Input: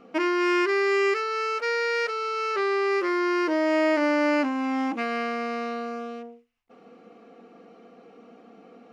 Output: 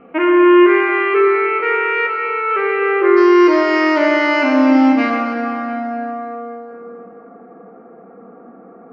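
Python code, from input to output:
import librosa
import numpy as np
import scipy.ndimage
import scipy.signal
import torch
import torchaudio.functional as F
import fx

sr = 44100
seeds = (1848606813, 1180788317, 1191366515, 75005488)

y = fx.steep_lowpass(x, sr, hz=fx.steps((0.0, 2700.0), (3.16, 6000.0), (5.09, 1700.0)), slope=36)
y = fx.rev_plate(y, sr, seeds[0], rt60_s=3.2, hf_ratio=0.75, predelay_ms=0, drr_db=0.0)
y = F.gain(torch.from_numpy(y), 7.0).numpy()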